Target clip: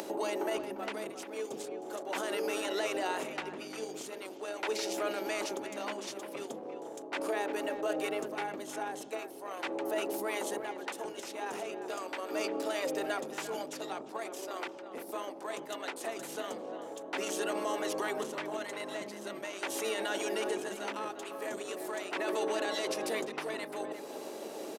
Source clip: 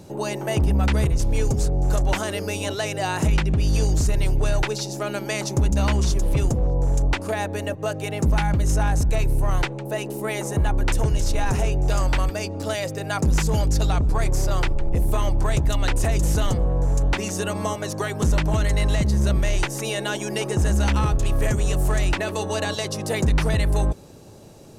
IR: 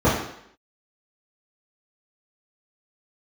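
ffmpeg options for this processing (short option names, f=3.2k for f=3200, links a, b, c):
-filter_complex "[0:a]bandreject=f=60:t=h:w=6,bandreject=f=120:t=h:w=6,bandreject=f=180:t=h:w=6,bandreject=f=240:t=h:w=6,bandreject=f=300:t=h:w=6,bandreject=f=360:t=h:w=6,bandreject=f=420:t=h:w=6,bandreject=f=480:t=h:w=6,asplit=2[a][b];[b]asetrate=22050,aresample=44100,atempo=2,volume=-8dB[c];[a][c]amix=inputs=2:normalize=0,equalizer=f=6.3k:t=o:w=1.6:g=-4.5,areverse,acompressor=threshold=-25dB:ratio=6,areverse,alimiter=level_in=4dB:limit=-24dB:level=0:latency=1:release=36,volume=-4dB,acompressor=mode=upward:threshold=-36dB:ratio=2.5,highpass=f=330:w=0.5412,highpass=f=330:w=1.3066,asplit=2[d][e];[e]adelay=350,highpass=300,lowpass=3.4k,asoftclip=type=hard:threshold=-33.5dB,volume=-10dB[f];[d][f]amix=inputs=2:normalize=0,asplit=2[g][h];[1:a]atrim=start_sample=2205,lowpass=1k[i];[h][i]afir=irnorm=-1:irlink=0,volume=-32dB[j];[g][j]amix=inputs=2:normalize=0,volume=3.5dB"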